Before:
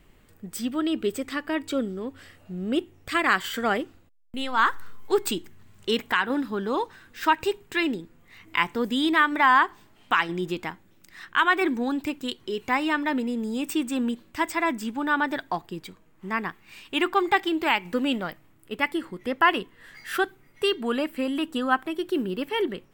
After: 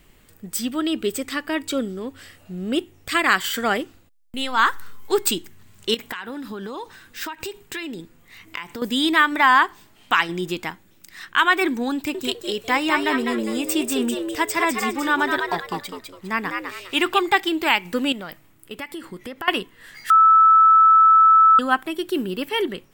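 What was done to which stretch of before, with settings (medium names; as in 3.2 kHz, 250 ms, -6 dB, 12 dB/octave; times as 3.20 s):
5.94–8.82 s: compression 16:1, threshold -30 dBFS
11.94–17.20 s: frequency-shifting echo 203 ms, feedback 30%, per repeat +95 Hz, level -4.5 dB
18.12–19.48 s: compression, threshold -32 dBFS
20.10–21.59 s: bleep 1.31 kHz -12.5 dBFS
whole clip: treble shelf 3 kHz +8 dB; trim +2 dB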